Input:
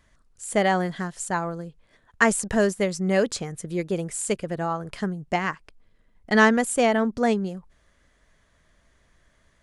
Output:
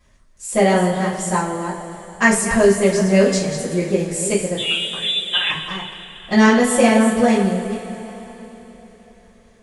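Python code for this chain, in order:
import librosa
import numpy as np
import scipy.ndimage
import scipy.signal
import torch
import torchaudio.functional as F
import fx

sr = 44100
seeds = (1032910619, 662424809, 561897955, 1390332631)

y = fx.reverse_delay(x, sr, ms=215, wet_db=-8.5)
y = fx.peak_eq(y, sr, hz=1500.0, db=-5.5, octaves=0.41)
y = fx.freq_invert(y, sr, carrier_hz=3700, at=(4.57, 5.5))
y = fx.rev_double_slope(y, sr, seeds[0], early_s=0.34, late_s=3.9, knee_db=-18, drr_db=-9.0)
y = y * librosa.db_to_amplitude(-2.5)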